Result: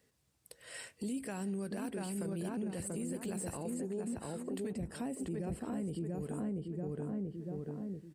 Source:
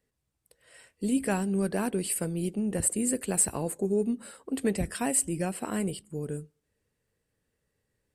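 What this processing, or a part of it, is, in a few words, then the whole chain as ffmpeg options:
broadcast voice chain: -filter_complex "[0:a]asettb=1/sr,asplit=3[link_01][link_02][link_03];[link_01]atrim=end=4.724[link_04];[link_02]atrim=start=4.72:end=6.01,asetpts=PTS-STARTPTS,afade=type=in:duration=0.004:curve=qsin,afade=type=out:start_time=1.286:duration=0.004:curve=qsin,tiltshelf=frequency=760:gain=8[link_05];[link_03]atrim=start=6.006[link_06];[link_04][link_05]acrossfade=duration=0.004:curve1=hsin:curve2=qsin[link_07];[link_07][link_06]acrossfade=duration=0.004:curve1=qsin:curve2=hsin,highpass=76,asplit=2[link_08][link_09];[link_09]adelay=687,lowpass=frequency=1500:poles=1,volume=-3dB,asplit=2[link_10][link_11];[link_11]adelay=687,lowpass=frequency=1500:poles=1,volume=0.32,asplit=2[link_12][link_13];[link_13]adelay=687,lowpass=frequency=1500:poles=1,volume=0.32,asplit=2[link_14][link_15];[link_15]adelay=687,lowpass=frequency=1500:poles=1,volume=0.32[link_16];[link_08][link_10][link_12][link_14][link_16]amix=inputs=5:normalize=0,deesser=0.75,acompressor=threshold=-41dB:ratio=5,equalizer=frequency=5300:width_type=o:width=1.4:gain=3.5,alimiter=level_in=13dB:limit=-24dB:level=0:latency=1:release=10,volume=-13dB,volume=6dB"

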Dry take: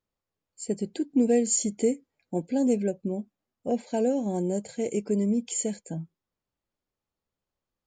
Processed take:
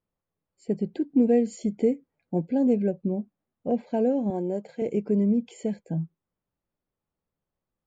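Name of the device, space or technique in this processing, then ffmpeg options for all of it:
phone in a pocket: -filter_complex "[0:a]lowpass=3700,equalizer=frequency=160:width_type=o:width=0.49:gain=5,highshelf=frequency=2400:gain=-10,asettb=1/sr,asplit=3[link_01][link_02][link_03];[link_01]atrim=end=4.304[link_04];[link_02]atrim=start=4.3:end=4.82,asetpts=PTS-STARTPTS,afade=type=in:duration=0.004:curve=qsin,afade=type=out:start_time=0.516:duration=0.004:curve=qsin,highpass=280[link_05];[link_03]atrim=start=4.816[link_06];[link_04][link_05]acrossfade=duration=0.004:curve1=hsin:curve2=qsin[link_07];[link_07][link_06]acrossfade=duration=0.004:curve1=qsin:curve2=hsin,volume=1.5dB"

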